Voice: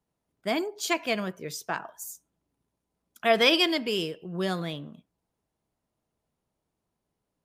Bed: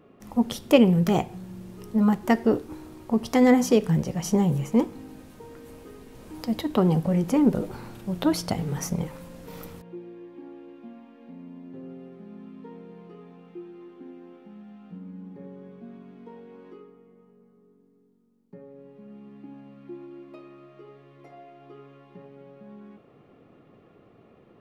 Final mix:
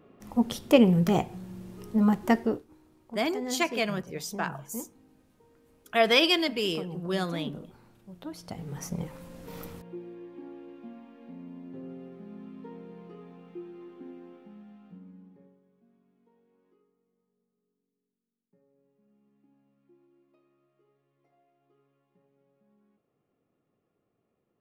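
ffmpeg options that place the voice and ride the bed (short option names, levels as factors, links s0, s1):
-filter_complex "[0:a]adelay=2700,volume=0.944[s0];[1:a]volume=5.31,afade=t=out:st=2.34:d=0.31:silence=0.16788,afade=t=in:st=8.34:d=1.24:silence=0.149624,afade=t=out:st=14.12:d=1.49:silence=0.0841395[s1];[s0][s1]amix=inputs=2:normalize=0"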